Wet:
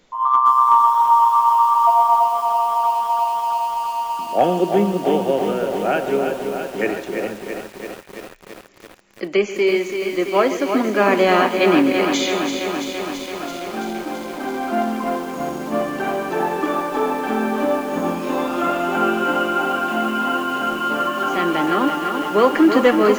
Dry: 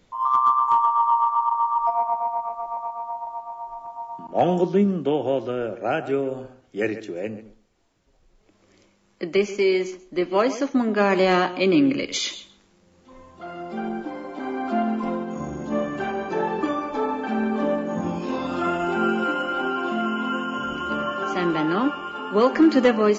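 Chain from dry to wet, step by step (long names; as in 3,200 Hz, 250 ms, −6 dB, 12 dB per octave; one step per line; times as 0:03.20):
parametric band 74 Hz −14.5 dB 2.1 octaves
on a send: delay with a high-pass on its return 150 ms, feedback 82%, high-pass 2,100 Hz, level −14 dB
on the sum: dynamic equaliser 5,100 Hz, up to −8 dB, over −53 dBFS, Q 2.3
feedback echo at a low word length 334 ms, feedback 80%, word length 7 bits, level −6.5 dB
level +4.5 dB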